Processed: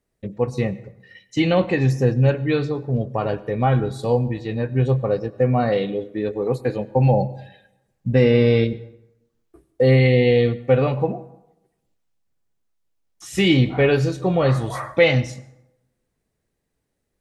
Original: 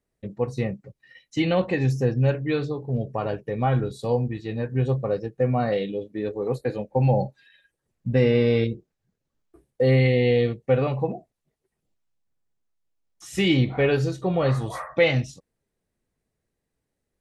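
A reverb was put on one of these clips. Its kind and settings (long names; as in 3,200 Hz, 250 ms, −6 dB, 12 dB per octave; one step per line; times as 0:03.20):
dense smooth reverb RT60 0.9 s, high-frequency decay 0.6×, pre-delay 80 ms, DRR 18.5 dB
level +4 dB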